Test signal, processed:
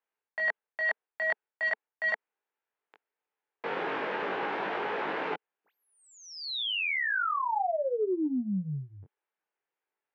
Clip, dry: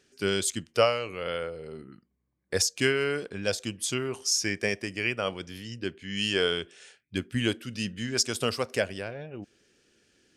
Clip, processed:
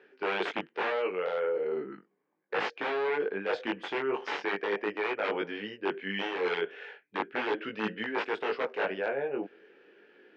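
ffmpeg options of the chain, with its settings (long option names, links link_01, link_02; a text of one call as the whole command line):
ffmpeg -i in.wav -af "aeval=exprs='(mod(11.2*val(0)+1,2)-1)/11.2':channel_layout=same,acontrast=26,flanger=delay=18.5:depth=3.4:speed=0.38,highpass=frequency=230:width=0.5412,highpass=frequency=230:width=1.3066,equalizer=frequency=240:width_type=q:width=4:gain=-7,equalizer=frequency=440:width_type=q:width=4:gain=7,equalizer=frequency=860:width_type=q:width=4:gain=7,equalizer=frequency=1600:width_type=q:width=4:gain=4,lowpass=frequency=2600:width=0.5412,lowpass=frequency=2600:width=1.3066,areverse,acompressor=threshold=-33dB:ratio=8,areverse,volume=5.5dB" out.wav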